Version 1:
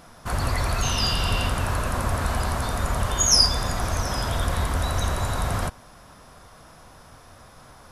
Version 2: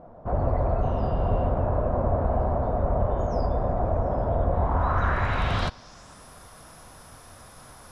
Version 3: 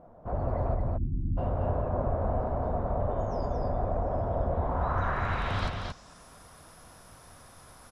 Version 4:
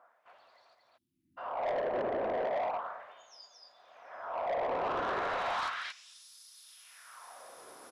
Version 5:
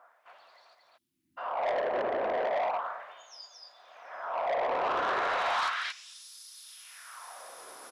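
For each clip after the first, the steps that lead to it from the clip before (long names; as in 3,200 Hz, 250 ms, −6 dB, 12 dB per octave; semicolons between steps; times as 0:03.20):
low-pass filter sweep 630 Hz → 11,000 Hz, 0:04.53–0:06.28
time-frequency box erased 0:00.75–0:01.37, 350–9,300 Hz; on a send: single-tap delay 226 ms −4 dB; on the sum: level −6 dB
auto-filter high-pass sine 0.35 Hz 360–4,400 Hz; soft clipping −28.5 dBFS, distortion −11 dB
low-shelf EQ 400 Hz −11 dB; level +6 dB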